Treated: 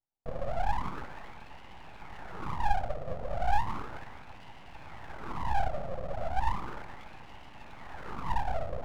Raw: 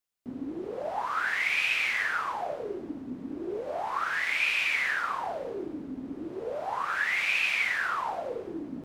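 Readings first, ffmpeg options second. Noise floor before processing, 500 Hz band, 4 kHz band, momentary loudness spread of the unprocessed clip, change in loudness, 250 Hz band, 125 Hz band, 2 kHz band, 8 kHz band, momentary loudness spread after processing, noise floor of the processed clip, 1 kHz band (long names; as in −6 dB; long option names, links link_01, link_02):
−42 dBFS, −4.0 dB, −15.5 dB, 14 LU, −6.5 dB, −8.5 dB, +12.5 dB, −17.5 dB, below −10 dB, 18 LU, −48 dBFS, −0.5 dB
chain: -af "lowpass=frequency=420:width_type=q:width=4.9,aeval=exprs='abs(val(0))':channel_layout=same"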